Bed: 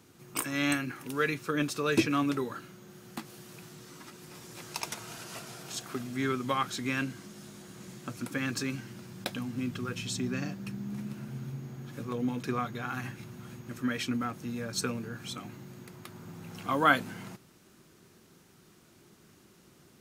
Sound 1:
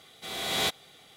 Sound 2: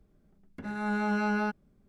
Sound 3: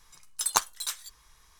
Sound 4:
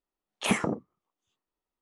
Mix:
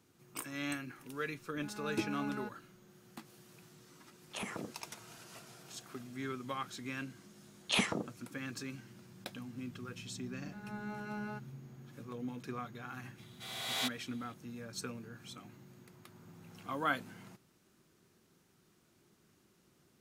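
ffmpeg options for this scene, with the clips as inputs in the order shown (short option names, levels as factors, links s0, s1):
-filter_complex "[2:a]asplit=2[s0][s1];[4:a]asplit=2[s2][s3];[0:a]volume=0.316[s4];[s2]acompressor=threshold=0.0398:ratio=6:attack=3.2:release=140:knee=1:detection=peak[s5];[s3]equalizer=f=4000:t=o:w=1.3:g=12.5[s6];[1:a]highpass=650[s7];[s0]atrim=end=1.88,asetpts=PTS-STARTPTS,volume=0.2,afade=t=in:d=0.004:c=hsin,afade=t=out:st=1.876:d=0.004:c=hsin,adelay=980[s8];[s5]atrim=end=1.81,asetpts=PTS-STARTPTS,volume=0.376,afade=t=in:d=0.004:c=hsin,afade=t=out:st=1.806:d=0.004:c=hsin,adelay=3920[s9];[s6]atrim=end=1.81,asetpts=PTS-STARTPTS,volume=0.398,afade=t=in:d=0.004:c=hsin,afade=t=out:st=1.806:d=0.004:c=hsin,adelay=7280[s10];[s1]atrim=end=1.88,asetpts=PTS-STARTPTS,volume=0.2,afade=t=in:d=0.004:c=hsin,afade=t=out:st=1.876:d=0.004:c=hsin,adelay=9880[s11];[s7]atrim=end=1.16,asetpts=PTS-STARTPTS,volume=0.422,afade=t=in:d=0.004:c=hsin,afade=t=out:st=1.156:d=0.004:c=hsin,adelay=13180[s12];[s4][s8][s9][s10][s11][s12]amix=inputs=6:normalize=0"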